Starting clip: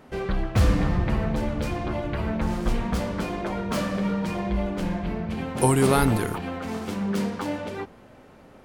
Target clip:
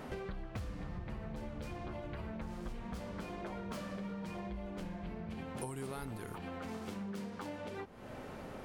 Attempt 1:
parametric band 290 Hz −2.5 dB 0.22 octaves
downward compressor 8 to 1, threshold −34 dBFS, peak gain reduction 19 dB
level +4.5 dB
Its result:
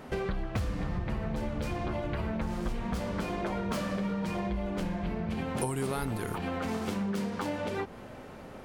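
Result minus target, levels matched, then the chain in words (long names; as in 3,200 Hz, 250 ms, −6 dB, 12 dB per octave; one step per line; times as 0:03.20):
downward compressor: peak gain reduction −10 dB
parametric band 290 Hz −2.5 dB 0.22 octaves
downward compressor 8 to 1, threshold −45.5 dBFS, peak gain reduction 29 dB
level +4.5 dB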